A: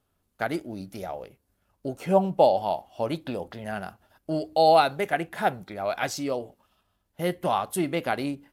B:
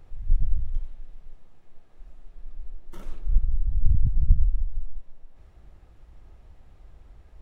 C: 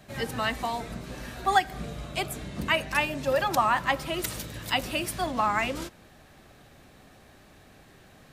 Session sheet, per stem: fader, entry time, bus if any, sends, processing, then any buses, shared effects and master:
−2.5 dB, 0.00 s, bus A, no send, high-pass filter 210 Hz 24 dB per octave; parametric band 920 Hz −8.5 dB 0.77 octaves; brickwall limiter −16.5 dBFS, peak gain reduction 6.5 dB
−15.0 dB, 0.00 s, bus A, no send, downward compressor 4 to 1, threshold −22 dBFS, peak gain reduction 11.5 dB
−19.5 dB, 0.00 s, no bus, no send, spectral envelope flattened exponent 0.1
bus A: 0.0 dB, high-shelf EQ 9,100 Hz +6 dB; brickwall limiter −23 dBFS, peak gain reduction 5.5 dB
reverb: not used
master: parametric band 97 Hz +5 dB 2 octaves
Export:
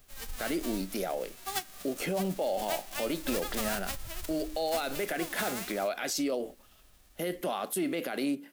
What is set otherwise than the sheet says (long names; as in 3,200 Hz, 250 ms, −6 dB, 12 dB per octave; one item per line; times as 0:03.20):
stem A −2.5 dB → +6.0 dB
stem C −19.5 dB → −12.5 dB
master: missing parametric band 97 Hz +5 dB 2 octaves